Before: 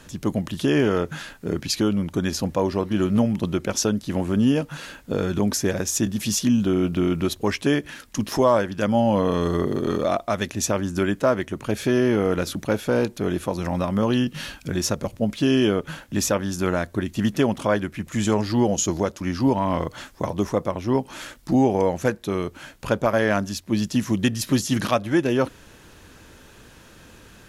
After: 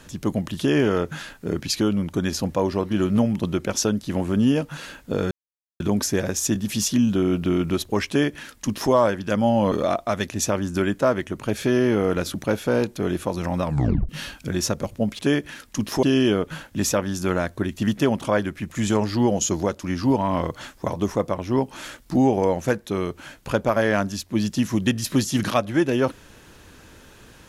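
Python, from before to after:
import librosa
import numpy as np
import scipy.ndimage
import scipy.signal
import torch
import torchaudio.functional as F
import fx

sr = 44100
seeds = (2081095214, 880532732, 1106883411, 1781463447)

y = fx.edit(x, sr, fx.insert_silence(at_s=5.31, length_s=0.49),
    fx.duplicate(start_s=7.59, length_s=0.84, to_s=15.4),
    fx.cut(start_s=9.23, length_s=0.7),
    fx.tape_stop(start_s=13.85, length_s=0.45), tone=tone)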